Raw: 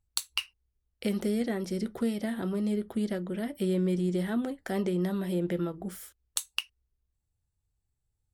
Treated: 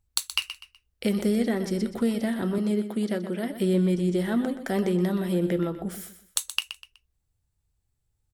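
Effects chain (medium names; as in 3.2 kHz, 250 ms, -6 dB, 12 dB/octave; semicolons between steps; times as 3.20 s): 2.58–3.53 s: high-pass 190 Hz; feedback delay 124 ms, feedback 32%, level -11.5 dB; trim +4.5 dB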